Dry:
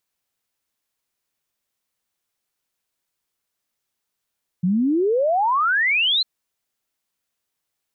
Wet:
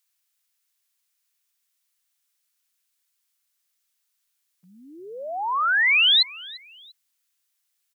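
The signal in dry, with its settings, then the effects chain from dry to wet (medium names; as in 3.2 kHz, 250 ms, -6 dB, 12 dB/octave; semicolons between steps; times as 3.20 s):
log sweep 170 Hz -> 4.2 kHz 1.60 s -16 dBFS
high-pass 1.3 kHz 12 dB/octave; treble shelf 3.9 kHz +6 dB; frequency-shifting echo 345 ms, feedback 34%, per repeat -48 Hz, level -21.5 dB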